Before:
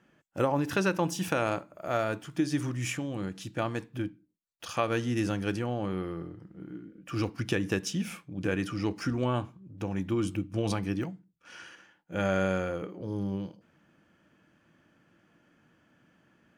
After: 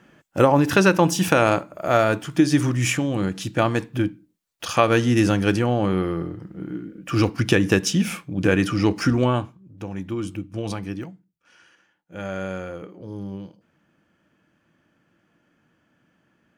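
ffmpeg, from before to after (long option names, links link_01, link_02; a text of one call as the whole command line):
ffmpeg -i in.wav -af "volume=18.5dB,afade=type=out:start_time=9.13:duration=0.44:silence=0.316228,afade=type=out:start_time=10.87:duration=0.7:silence=0.354813,afade=type=in:start_time=11.57:duration=1.19:silence=0.421697" out.wav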